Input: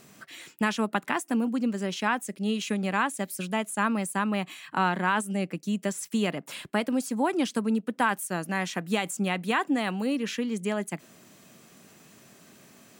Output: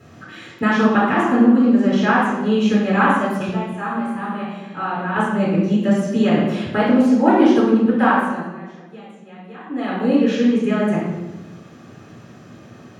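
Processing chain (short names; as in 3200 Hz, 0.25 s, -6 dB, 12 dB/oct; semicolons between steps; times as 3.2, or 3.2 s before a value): 3.47–5.16 resonator 58 Hz, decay 0.86 s, harmonics all, mix 80%; 7.97–10.11 dip -22.5 dB, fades 0.49 s; reverb RT60 1.1 s, pre-delay 3 ms, DRR -10 dB; gain -11 dB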